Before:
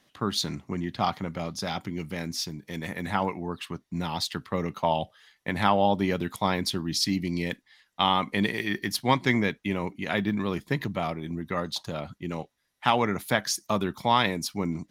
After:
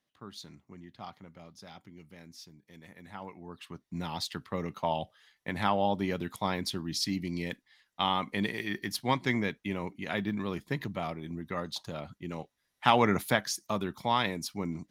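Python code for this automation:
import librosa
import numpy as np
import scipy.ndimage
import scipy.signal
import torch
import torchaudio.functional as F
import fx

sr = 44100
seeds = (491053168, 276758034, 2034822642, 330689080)

y = fx.gain(x, sr, db=fx.line((3.1, -18.0), (3.95, -5.5), (12.36, -5.5), (13.17, 2.0), (13.49, -5.5)))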